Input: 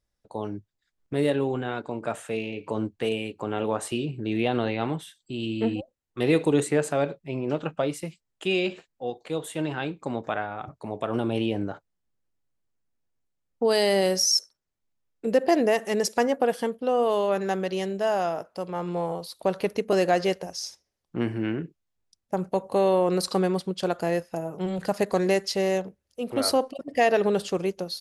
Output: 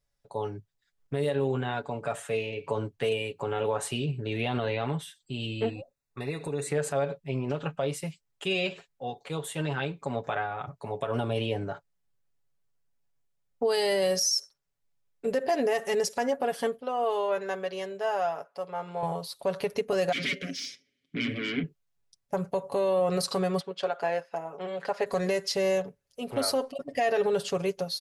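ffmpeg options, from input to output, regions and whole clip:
-filter_complex "[0:a]asettb=1/sr,asplit=3[s0][s1][s2];[s0]atrim=end=5.694[s3];[s1]atrim=start=5.69:end=6.68,asetpts=PTS-STARTPTS,afade=t=in:d=0.004:c=qsin,afade=t=out:st=0.986:d=0.004:c=qsin,acompressor=threshold=0.0251:ratio=2.5:attack=3.2:release=140:knee=1:detection=peak,asuperstop=centerf=3100:order=20:qfactor=5.2[s4];[s2]atrim=start=6.676[s5];[s3][s4]acrossfade=d=0.004:c1=hsin:c2=qsin[s6];[s6][s5]acrossfade=d=0.004:c1=qsin:c2=hsin,asettb=1/sr,asplit=3[s7][s8][s9];[s7]atrim=end=16.814[s10];[s8]atrim=start=16.81:end=19.03,asetpts=PTS-STARTPTS,afade=t=in:d=0.004:c=qsin,afade=t=out:st=2.216:d=0.004:c=qsin,highpass=f=600:p=1,highshelf=f=2800:g=-9[s11];[s9]atrim=start=19.026[s12];[s10][s11]acrossfade=d=0.004:c1=hsin:c2=qsin[s13];[s13][s12]acrossfade=d=0.004:c1=qsin:c2=hsin,asettb=1/sr,asplit=3[s14][s15][s16];[s14]atrim=end=20.124[s17];[s15]atrim=start=20.12:end=21.64,asetpts=PTS-STARTPTS,afade=t=in:d=0.004:c=qsin,afade=t=out:st=1.516:d=0.004:c=qsin,bandreject=f=790:w=16,aeval=exprs='0.266*sin(PI/2*10*val(0)/0.266)':c=same,asplit=3[s18][s19][s20];[s18]bandpass=f=270:t=q:w=8,volume=1[s21];[s19]bandpass=f=2290:t=q:w=8,volume=0.501[s22];[s20]bandpass=f=3010:t=q:w=8,volume=0.355[s23];[s21][s22][s23]amix=inputs=3:normalize=0[s24];[s16]atrim=start=21.636[s25];[s17][s24]acrossfade=d=0.004:c1=hsin:c2=qsin[s26];[s26][s25]acrossfade=d=0.004:c1=qsin:c2=hsin,asettb=1/sr,asplit=3[s27][s28][s29];[s27]atrim=end=23.604[s30];[s28]atrim=start=23.6:end=25.06,asetpts=PTS-STARTPTS,afade=t=in:d=0.004:c=qsin,afade=t=out:st=1.456:d=0.004:c=qsin,highpass=380,lowpass=2200,aemphasis=mode=production:type=75kf[s31];[s29]atrim=start=25.056[s32];[s30][s31]acrossfade=d=0.004:c1=hsin:c2=qsin[s33];[s33][s32]acrossfade=d=0.004:c1=qsin:c2=hsin,equalizer=f=300:t=o:w=0.34:g=-10.5,aecho=1:1:7.1:0.67,alimiter=limit=0.141:level=0:latency=1:release=81,volume=0.891"

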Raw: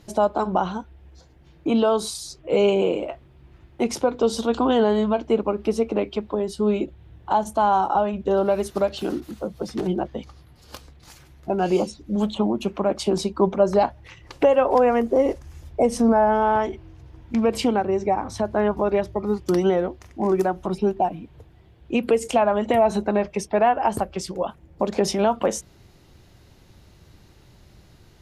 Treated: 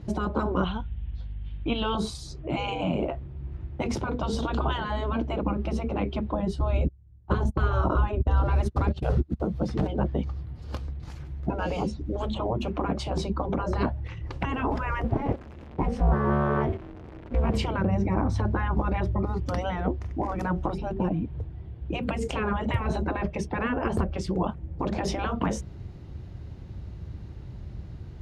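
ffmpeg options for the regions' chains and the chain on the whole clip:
-filter_complex "[0:a]asettb=1/sr,asplit=3[s0][s1][s2];[s0]atrim=end=0.644[s3];[s1]atrim=start=0.64:end=1.95,asetpts=PTS-STARTPTS,afade=t=in:d=0.004:c=qsin,afade=t=out:st=1.306:d=0.004:c=qsin,aeval=exprs='val(0)+0.00708*(sin(2*PI*50*n/s)+sin(2*PI*2*50*n/s)/2+sin(2*PI*3*50*n/s)/3+sin(2*PI*4*50*n/s)/4+sin(2*PI*5*50*n/s)/5)':c=same,lowpass=f=3200:t=q:w=3.7,equalizer=f=280:w=0.36:g=-13[s4];[s2]atrim=start=1.946[s5];[s3][s4]acrossfade=d=0.004:c1=hsin:c2=qsin[s6];[s6][s5]acrossfade=d=0.004:c1=qsin:c2=hsin,asettb=1/sr,asplit=3[s7][s8][s9];[s7]atrim=end=6.594[s10];[s8]atrim=start=6.59:end=9.4,asetpts=PTS-STARTPTS,afade=t=in:d=0.004:c=qsin,afade=t=out:st=2.806:d=0.004:c=qsin,agate=range=0.0282:threshold=0.0224:ratio=16:release=100:detection=peak,lowshelf=f=280:g=11,bandreject=f=3000:w=30[s11];[s9]atrim=start=9.396[s12];[s10][s11]acrossfade=d=0.004:c1=hsin:c2=qsin[s13];[s13][s12]acrossfade=d=0.004:c1=qsin:c2=hsin,asettb=1/sr,asplit=3[s14][s15][s16];[s14]atrim=end=15.044[s17];[s15]atrim=start=15.04:end=17.54,asetpts=PTS-STARTPTS,afade=t=in:d=0.004:c=qsin,afade=t=out:st=2.496:d=0.004:c=qsin,aeval=exprs='val(0)+0.5*0.0168*sgn(val(0))':c=same,acrossover=split=210 3700:gain=0.0891 1 0.251[s18][s19][s20];[s18][s19][s20]amix=inputs=3:normalize=0,tremolo=f=290:d=0.857[s21];[s16]atrim=start=17.536[s22];[s17][s21]acrossfade=d=0.004:c1=hsin:c2=qsin[s23];[s23][s22]acrossfade=d=0.004:c1=qsin:c2=hsin,afftfilt=real='re*lt(hypot(re,im),0.282)':imag='im*lt(hypot(re,im),0.282)':win_size=1024:overlap=0.75,highpass=56,aemphasis=mode=reproduction:type=riaa,volume=1.12"

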